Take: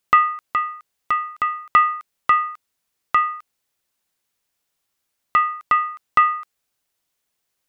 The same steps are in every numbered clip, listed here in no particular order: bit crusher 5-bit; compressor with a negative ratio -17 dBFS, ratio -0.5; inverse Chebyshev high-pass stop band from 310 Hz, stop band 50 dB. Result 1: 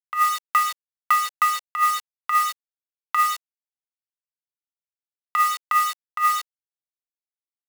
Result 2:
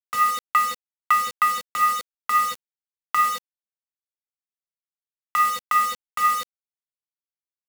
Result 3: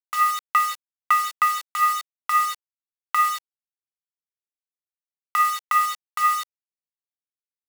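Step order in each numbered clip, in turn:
bit crusher > compressor with a negative ratio > inverse Chebyshev high-pass; compressor with a negative ratio > inverse Chebyshev high-pass > bit crusher; compressor with a negative ratio > bit crusher > inverse Chebyshev high-pass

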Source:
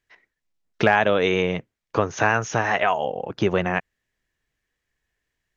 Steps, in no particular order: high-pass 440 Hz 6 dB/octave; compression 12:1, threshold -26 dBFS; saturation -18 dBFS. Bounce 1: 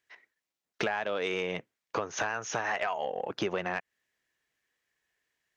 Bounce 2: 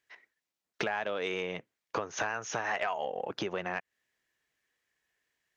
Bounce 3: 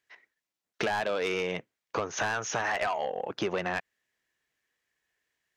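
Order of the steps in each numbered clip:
high-pass > compression > saturation; compression > high-pass > saturation; high-pass > saturation > compression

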